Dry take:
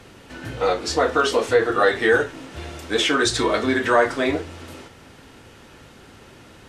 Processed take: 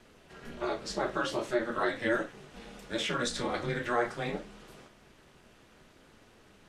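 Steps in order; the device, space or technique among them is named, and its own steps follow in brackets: alien voice (ring modulator 120 Hz; flange 0.47 Hz, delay 8.7 ms, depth 8.4 ms, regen -52%); trim -5.5 dB

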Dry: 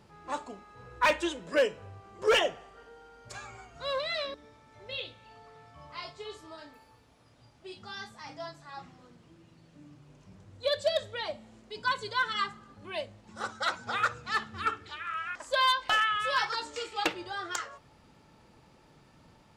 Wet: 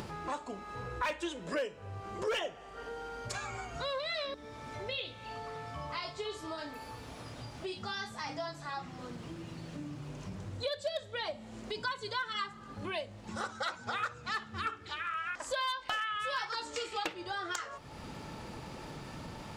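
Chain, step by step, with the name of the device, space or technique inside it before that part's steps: upward and downward compression (upward compressor, threshold -31 dBFS; compression 4:1, threshold -33 dBFS, peak gain reduction 10.5 dB)

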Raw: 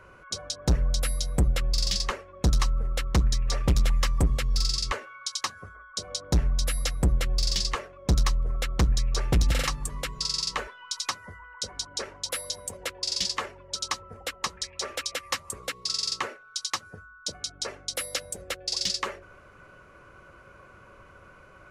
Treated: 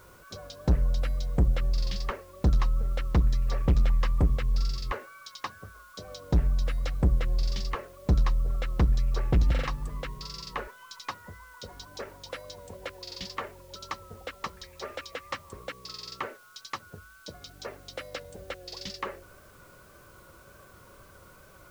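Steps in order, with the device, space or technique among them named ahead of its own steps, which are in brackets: cassette deck with a dirty head (tape spacing loss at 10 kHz 27 dB; wow and flutter; white noise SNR 33 dB)

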